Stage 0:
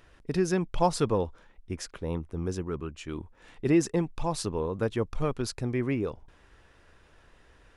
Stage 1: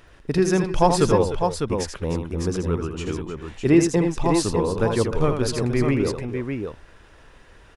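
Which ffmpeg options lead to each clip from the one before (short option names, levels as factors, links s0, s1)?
-af "aecho=1:1:80|301|303|602:0.447|0.15|0.211|0.501,volume=2.11"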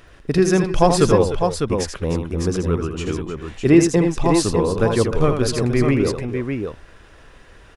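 -af "bandreject=f=900:w=13,volume=1.5"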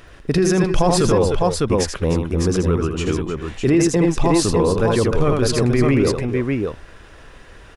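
-af "alimiter=limit=0.266:level=0:latency=1:release=14,volume=1.5"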